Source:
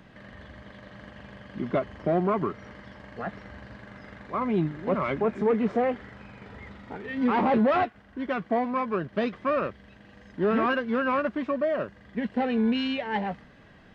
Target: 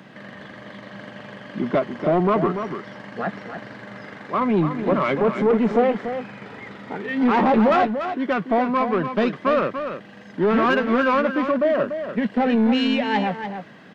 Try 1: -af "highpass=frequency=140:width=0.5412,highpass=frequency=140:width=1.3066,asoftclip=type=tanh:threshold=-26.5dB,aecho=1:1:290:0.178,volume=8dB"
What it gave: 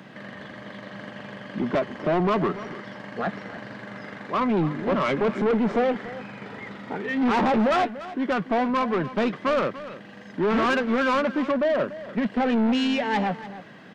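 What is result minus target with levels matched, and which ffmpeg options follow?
soft clipping: distortion +7 dB; echo-to-direct −6.5 dB
-af "highpass=frequency=140:width=0.5412,highpass=frequency=140:width=1.3066,asoftclip=type=tanh:threshold=-20dB,aecho=1:1:290:0.376,volume=8dB"

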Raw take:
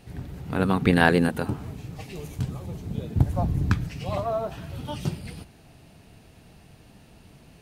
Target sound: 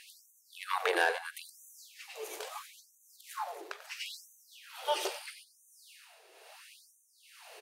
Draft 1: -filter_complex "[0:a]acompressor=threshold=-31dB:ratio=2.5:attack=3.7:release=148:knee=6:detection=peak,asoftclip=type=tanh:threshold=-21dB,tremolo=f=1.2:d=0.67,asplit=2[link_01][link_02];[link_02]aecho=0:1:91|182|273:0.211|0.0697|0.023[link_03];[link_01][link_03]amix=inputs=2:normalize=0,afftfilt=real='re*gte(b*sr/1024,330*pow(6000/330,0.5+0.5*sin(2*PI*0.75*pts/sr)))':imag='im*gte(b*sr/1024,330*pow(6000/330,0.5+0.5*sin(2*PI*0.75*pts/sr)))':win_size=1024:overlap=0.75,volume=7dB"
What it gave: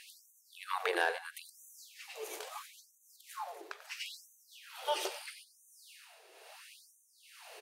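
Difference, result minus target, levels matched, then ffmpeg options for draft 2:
downward compressor: peak gain reduction +5 dB
-filter_complex "[0:a]acompressor=threshold=-23dB:ratio=2.5:attack=3.7:release=148:knee=6:detection=peak,asoftclip=type=tanh:threshold=-21dB,tremolo=f=1.2:d=0.67,asplit=2[link_01][link_02];[link_02]aecho=0:1:91|182|273:0.211|0.0697|0.023[link_03];[link_01][link_03]amix=inputs=2:normalize=0,afftfilt=real='re*gte(b*sr/1024,330*pow(6000/330,0.5+0.5*sin(2*PI*0.75*pts/sr)))':imag='im*gte(b*sr/1024,330*pow(6000/330,0.5+0.5*sin(2*PI*0.75*pts/sr)))':win_size=1024:overlap=0.75,volume=7dB"

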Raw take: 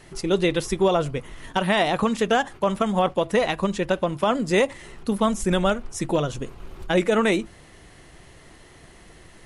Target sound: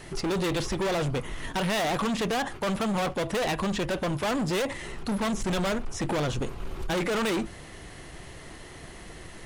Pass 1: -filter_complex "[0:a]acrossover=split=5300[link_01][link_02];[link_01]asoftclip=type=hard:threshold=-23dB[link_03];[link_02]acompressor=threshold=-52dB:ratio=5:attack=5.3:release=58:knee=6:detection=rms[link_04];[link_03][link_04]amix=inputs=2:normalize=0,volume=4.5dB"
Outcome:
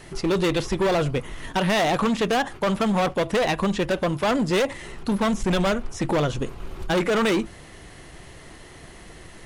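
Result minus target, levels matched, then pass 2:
hard clipping: distortion −4 dB
-filter_complex "[0:a]acrossover=split=5300[link_01][link_02];[link_01]asoftclip=type=hard:threshold=-30dB[link_03];[link_02]acompressor=threshold=-52dB:ratio=5:attack=5.3:release=58:knee=6:detection=rms[link_04];[link_03][link_04]amix=inputs=2:normalize=0,volume=4.5dB"

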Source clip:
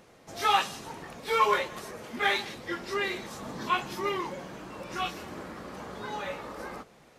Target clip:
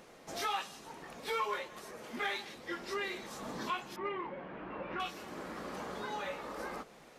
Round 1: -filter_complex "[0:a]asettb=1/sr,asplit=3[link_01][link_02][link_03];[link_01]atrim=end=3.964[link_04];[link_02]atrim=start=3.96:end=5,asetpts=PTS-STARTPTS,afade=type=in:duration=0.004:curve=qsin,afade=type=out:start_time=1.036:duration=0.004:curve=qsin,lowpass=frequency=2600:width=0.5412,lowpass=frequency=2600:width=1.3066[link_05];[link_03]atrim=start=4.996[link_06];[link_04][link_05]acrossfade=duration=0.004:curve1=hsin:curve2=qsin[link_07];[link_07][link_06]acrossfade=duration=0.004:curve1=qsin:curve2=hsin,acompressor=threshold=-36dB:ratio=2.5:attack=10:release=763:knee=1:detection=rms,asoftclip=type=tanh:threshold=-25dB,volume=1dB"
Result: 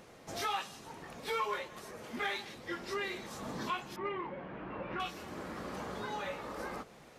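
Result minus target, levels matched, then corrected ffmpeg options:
125 Hz band +4.0 dB
-filter_complex "[0:a]asettb=1/sr,asplit=3[link_01][link_02][link_03];[link_01]atrim=end=3.964[link_04];[link_02]atrim=start=3.96:end=5,asetpts=PTS-STARTPTS,afade=type=in:duration=0.004:curve=qsin,afade=type=out:start_time=1.036:duration=0.004:curve=qsin,lowpass=frequency=2600:width=0.5412,lowpass=frequency=2600:width=1.3066[link_05];[link_03]atrim=start=4.996[link_06];[link_04][link_05]acrossfade=duration=0.004:curve1=hsin:curve2=qsin[link_07];[link_07][link_06]acrossfade=duration=0.004:curve1=qsin:curve2=hsin,acompressor=threshold=-36dB:ratio=2.5:attack=10:release=763:knee=1:detection=rms,equalizer=frequency=91:width_type=o:width=1.3:gain=-9.5,asoftclip=type=tanh:threshold=-25dB,volume=1dB"

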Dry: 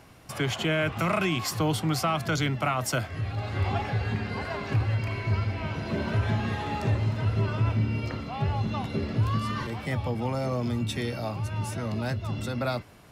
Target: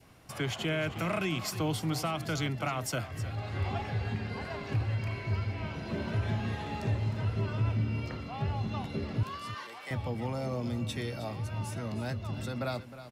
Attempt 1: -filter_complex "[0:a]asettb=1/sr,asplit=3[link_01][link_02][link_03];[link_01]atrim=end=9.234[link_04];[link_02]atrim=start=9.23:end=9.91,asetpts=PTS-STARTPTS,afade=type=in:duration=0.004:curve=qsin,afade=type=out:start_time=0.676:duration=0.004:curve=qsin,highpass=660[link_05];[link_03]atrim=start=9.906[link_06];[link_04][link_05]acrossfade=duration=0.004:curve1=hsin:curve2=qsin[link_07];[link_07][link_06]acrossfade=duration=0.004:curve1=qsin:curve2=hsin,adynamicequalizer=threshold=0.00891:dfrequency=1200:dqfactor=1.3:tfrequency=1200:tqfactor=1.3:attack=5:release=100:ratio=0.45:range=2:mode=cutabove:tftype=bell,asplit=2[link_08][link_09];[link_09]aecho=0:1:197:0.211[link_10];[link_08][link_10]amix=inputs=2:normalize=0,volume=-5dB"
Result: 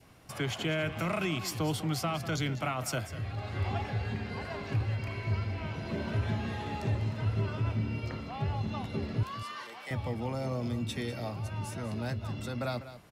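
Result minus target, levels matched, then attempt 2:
echo 115 ms early
-filter_complex "[0:a]asettb=1/sr,asplit=3[link_01][link_02][link_03];[link_01]atrim=end=9.234[link_04];[link_02]atrim=start=9.23:end=9.91,asetpts=PTS-STARTPTS,afade=type=in:duration=0.004:curve=qsin,afade=type=out:start_time=0.676:duration=0.004:curve=qsin,highpass=660[link_05];[link_03]atrim=start=9.906[link_06];[link_04][link_05]acrossfade=duration=0.004:curve1=hsin:curve2=qsin[link_07];[link_07][link_06]acrossfade=duration=0.004:curve1=qsin:curve2=hsin,adynamicequalizer=threshold=0.00891:dfrequency=1200:dqfactor=1.3:tfrequency=1200:tqfactor=1.3:attack=5:release=100:ratio=0.45:range=2:mode=cutabove:tftype=bell,asplit=2[link_08][link_09];[link_09]aecho=0:1:312:0.211[link_10];[link_08][link_10]amix=inputs=2:normalize=0,volume=-5dB"

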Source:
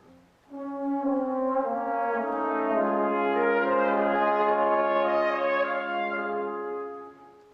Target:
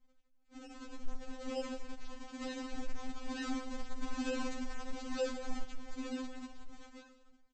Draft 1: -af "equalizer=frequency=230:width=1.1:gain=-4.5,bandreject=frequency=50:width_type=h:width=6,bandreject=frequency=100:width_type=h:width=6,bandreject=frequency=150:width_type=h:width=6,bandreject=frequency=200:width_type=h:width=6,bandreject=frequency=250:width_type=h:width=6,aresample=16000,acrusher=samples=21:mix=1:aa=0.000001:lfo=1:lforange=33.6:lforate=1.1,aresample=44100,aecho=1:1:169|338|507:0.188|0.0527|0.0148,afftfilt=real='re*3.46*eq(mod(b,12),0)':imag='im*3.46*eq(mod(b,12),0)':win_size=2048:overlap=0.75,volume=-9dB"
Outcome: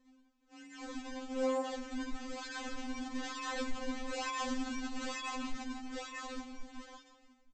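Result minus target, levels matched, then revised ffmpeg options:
sample-and-hold swept by an LFO: distortion −28 dB
-af "equalizer=frequency=230:width=1.1:gain=-4.5,bandreject=frequency=50:width_type=h:width=6,bandreject=frequency=100:width_type=h:width=6,bandreject=frequency=150:width_type=h:width=6,bandreject=frequency=200:width_type=h:width=6,bandreject=frequency=250:width_type=h:width=6,aresample=16000,acrusher=samples=68:mix=1:aa=0.000001:lfo=1:lforange=109:lforate=1.1,aresample=44100,aecho=1:1:169|338|507:0.188|0.0527|0.0148,afftfilt=real='re*3.46*eq(mod(b,12),0)':imag='im*3.46*eq(mod(b,12),0)':win_size=2048:overlap=0.75,volume=-9dB"

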